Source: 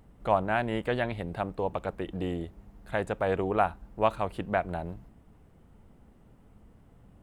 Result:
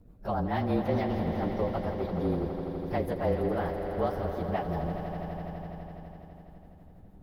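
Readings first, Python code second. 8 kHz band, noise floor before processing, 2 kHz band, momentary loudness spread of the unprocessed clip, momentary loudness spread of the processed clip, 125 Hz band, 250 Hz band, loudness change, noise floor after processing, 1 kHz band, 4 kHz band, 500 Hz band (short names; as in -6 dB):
n/a, -58 dBFS, -7.5 dB, 9 LU, 14 LU, +4.0 dB, +3.5 dB, -1.0 dB, -52 dBFS, -3.5 dB, -4.0 dB, -0.5 dB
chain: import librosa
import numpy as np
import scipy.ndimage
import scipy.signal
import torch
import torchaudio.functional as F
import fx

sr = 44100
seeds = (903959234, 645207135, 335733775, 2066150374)

p1 = fx.partial_stretch(x, sr, pct=110)
p2 = fx.peak_eq(p1, sr, hz=2600.0, db=-10.5, octaves=2.4)
p3 = fx.level_steps(p2, sr, step_db=23)
p4 = p2 + (p3 * librosa.db_to_amplitude(1.5))
p5 = fx.rotary(p4, sr, hz=6.7)
p6 = p5 + fx.echo_swell(p5, sr, ms=83, loudest=5, wet_db=-12, dry=0)
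p7 = fx.attack_slew(p6, sr, db_per_s=290.0)
y = p7 * librosa.db_to_amplitude(3.5)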